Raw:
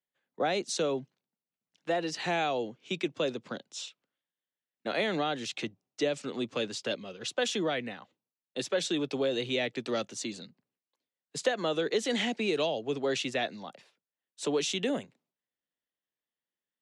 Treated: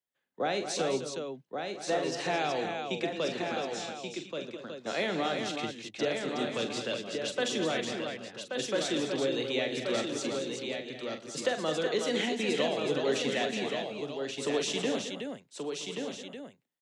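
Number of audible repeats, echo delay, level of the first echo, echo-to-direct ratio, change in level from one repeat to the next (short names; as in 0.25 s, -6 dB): 9, 44 ms, -9.0 dB, -0.5 dB, no steady repeat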